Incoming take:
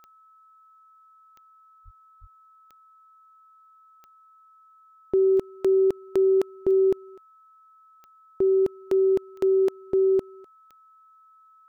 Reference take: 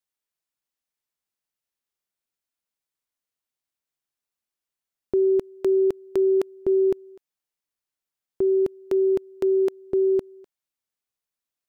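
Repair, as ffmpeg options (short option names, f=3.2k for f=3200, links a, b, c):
-filter_complex "[0:a]adeclick=t=4,bandreject=f=1.3k:w=30,asplit=3[a][b][c];[a]afade=t=out:st=1.84:d=0.02[d];[b]highpass=f=140:w=0.5412,highpass=f=140:w=1.3066,afade=t=in:st=1.84:d=0.02,afade=t=out:st=1.96:d=0.02[e];[c]afade=t=in:st=1.96:d=0.02[f];[d][e][f]amix=inputs=3:normalize=0,asplit=3[g][h][i];[g]afade=t=out:st=2.2:d=0.02[j];[h]highpass=f=140:w=0.5412,highpass=f=140:w=1.3066,afade=t=in:st=2.2:d=0.02,afade=t=out:st=2.32:d=0.02[k];[i]afade=t=in:st=2.32:d=0.02[l];[j][k][l]amix=inputs=3:normalize=0"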